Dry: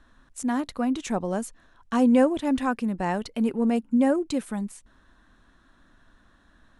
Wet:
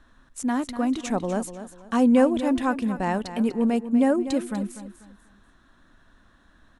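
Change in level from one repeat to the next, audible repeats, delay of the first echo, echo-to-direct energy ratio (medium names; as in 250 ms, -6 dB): -10.0 dB, 3, 245 ms, -11.5 dB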